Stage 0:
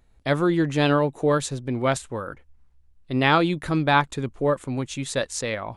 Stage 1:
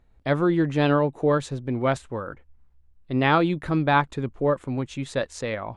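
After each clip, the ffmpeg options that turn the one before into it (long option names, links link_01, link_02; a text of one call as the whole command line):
ffmpeg -i in.wav -af "lowpass=frequency=2200:poles=1" out.wav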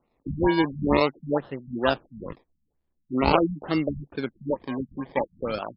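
ffmpeg -i in.wav -filter_complex "[0:a]acrossover=split=190 2500:gain=0.0708 1 0.2[link_01][link_02][link_03];[link_01][link_02][link_03]amix=inputs=3:normalize=0,acrusher=samples=26:mix=1:aa=0.000001:lfo=1:lforange=15.6:lforate=0.46,afftfilt=real='re*lt(b*sr/1024,220*pow(5400/220,0.5+0.5*sin(2*PI*2.2*pts/sr)))':imag='im*lt(b*sr/1024,220*pow(5400/220,0.5+0.5*sin(2*PI*2.2*pts/sr)))':win_size=1024:overlap=0.75,volume=1.5dB" out.wav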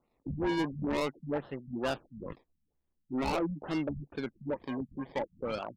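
ffmpeg -i in.wav -af "asoftclip=type=tanh:threshold=-21.5dB,volume=-4.5dB" out.wav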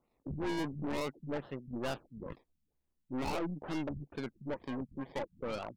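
ffmpeg -i in.wav -af "aeval=exprs='(tanh(39.8*val(0)+0.45)-tanh(0.45))/39.8':channel_layout=same" out.wav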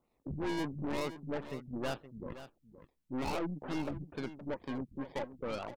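ffmpeg -i in.wav -af "aecho=1:1:519:0.224" out.wav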